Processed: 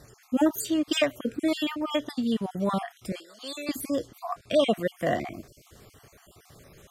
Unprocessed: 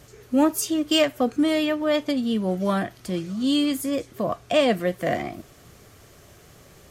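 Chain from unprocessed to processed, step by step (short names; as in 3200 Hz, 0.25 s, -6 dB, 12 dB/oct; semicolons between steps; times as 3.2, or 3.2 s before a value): random spectral dropouts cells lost 37%; 3.12–3.69 HPF 500 Hz 24 dB/oct; gain -1.5 dB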